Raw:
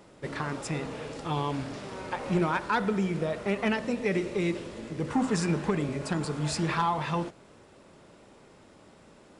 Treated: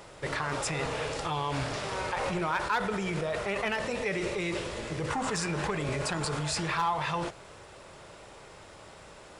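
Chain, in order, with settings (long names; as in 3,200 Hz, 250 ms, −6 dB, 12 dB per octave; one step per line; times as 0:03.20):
parametric band 240 Hz −13.5 dB 1.3 octaves
in parallel at 0 dB: compressor whose output falls as the input rises −39 dBFS, ratio −0.5
on the sum: gain into a clipping stage and back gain 20.5 dB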